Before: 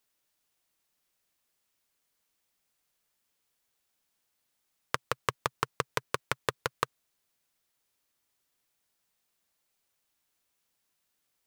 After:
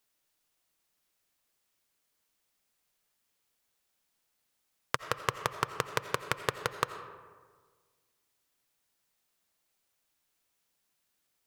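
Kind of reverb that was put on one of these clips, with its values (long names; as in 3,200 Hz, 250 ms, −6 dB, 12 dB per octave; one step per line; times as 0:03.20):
comb and all-pass reverb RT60 1.6 s, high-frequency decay 0.45×, pre-delay 45 ms, DRR 10 dB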